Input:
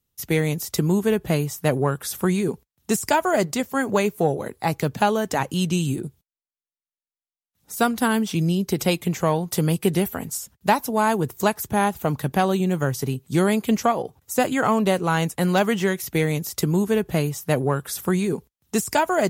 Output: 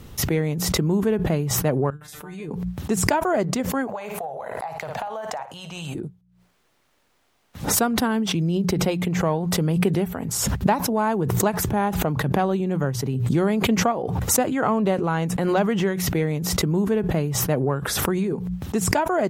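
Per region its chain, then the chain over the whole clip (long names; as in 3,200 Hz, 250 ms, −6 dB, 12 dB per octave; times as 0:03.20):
0:01.90–0:02.51: output level in coarse steps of 14 dB + tuned comb filter 150 Hz, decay 0.18 s, mix 100%
0:03.87–0:05.95: low shelf with overshoot 480 Hz −13.5 dB, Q 3 + downward compressor, threshold −26 dBFS + flutter between parallel walls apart 9.6 metres, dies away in 0.26 s
whole clip: low-pass filter 1,400 Hz 6 dB per octave; mains-hum notches 60/120/180 Hz; background raised ahead of every attack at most 28 dB per second; level −1 dB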